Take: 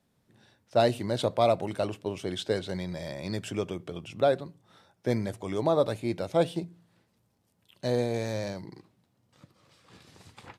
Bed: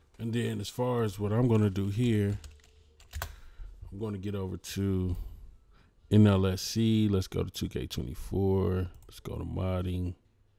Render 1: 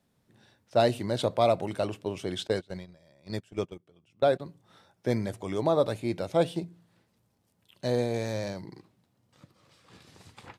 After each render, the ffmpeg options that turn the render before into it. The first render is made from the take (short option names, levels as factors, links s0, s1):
-filter_complex "[0:a]asettb=1/sr,asplit=3[s0][s1][s2];[s0]atrim=end=2.474[s3];[s1]atrim=start=2.47:end=4.4,asetpts=PTS-STARTPTS,afade=t=in:d=0.004:c=qsin,afade=t=out:st=1.926:d=0.004:c=qsin,agate=range=0.0708:threshold=0.0224:ratio=16:release=100:detection=peak[s4];[s2]atrim=start=4.396[s5];[s3][s4]acrossfade=d=0.004:c1=hsin:c2=qsin[s6];[s6][s5]acrossfade=d=0.004:c1=qsin:c2=hsin"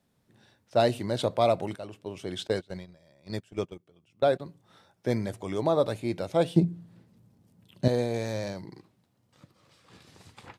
-filter_complex "[0:a]asettb=1/sr,asplit=3[s0][s1][s2];[s0]atrim=end=6.564[s3];[s1]atrim=start=6.56:end=7.88,asetpts=PTS-STARTPTS,afade=t=in:d=0.004:c=qsin,afade=t=out:st=1.316:d=0.004:c=qsin,equalizer=f=160:t=o:w=2.7:g=14.5[s4];[s2]atrim=start=7.876[s5];[s3][s4]acrossfade=d=0.004:c1=hsin:c2=qsin[s6];[s6][s5]acrossfade=d=0.004:c1=qsin:c2=hsin,asplit=2[s7][s8];[s7]atrim=end=1.76,asetpts=PTS-STARTPTS,afade=t=out:st=1.756:d=0.004:c=hsin:silence=0.223872[s9];[s8]atrim=start=1.76,asetpts=PTS-STARTPTS,afade=t=in:d=0.75:silence=0.223872[s10];[s9][s10]concat=n=2:v=0:a=1"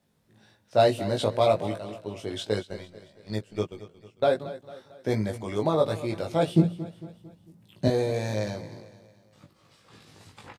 -filter_complex "[0:a]asplit=2[s0][s1];[s1]adelay=19,volume=0.708[s2];[s0][s2]amix=inputs=2:normalize=0,aecho=1:1:225|450|675|900:0.168|0.0823|0.0403|0.0198"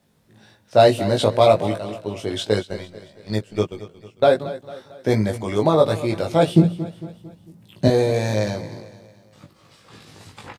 -af "volume=2.37,alimiter=limit=0.794:level=0:latency=1"